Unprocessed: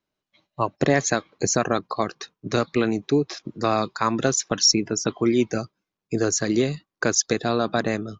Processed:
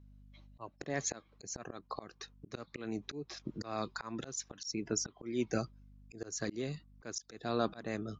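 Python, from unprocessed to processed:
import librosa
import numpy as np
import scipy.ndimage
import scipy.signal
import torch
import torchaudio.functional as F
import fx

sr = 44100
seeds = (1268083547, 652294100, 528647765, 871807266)

y = fx.add_hum(x, sr, base_hz=50, snr_db=30)
y = fx.auto_swell(y, sr, attack_ms=555.0)
y = y * librosa.db_to_amplitude(-3.5)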